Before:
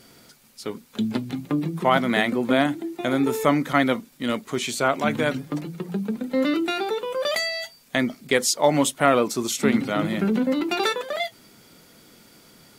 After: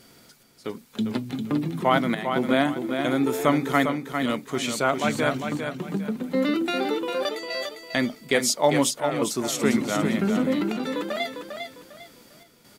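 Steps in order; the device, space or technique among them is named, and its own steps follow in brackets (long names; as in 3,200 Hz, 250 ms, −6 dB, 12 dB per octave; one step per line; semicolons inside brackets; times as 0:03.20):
trance gate with a delay (gate pattern "xxxx..xxxxxxxxxx" 140 BPM −12 dB; repeating echo 401 ms, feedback 30%, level −6.5 dB)
level −1.5 dB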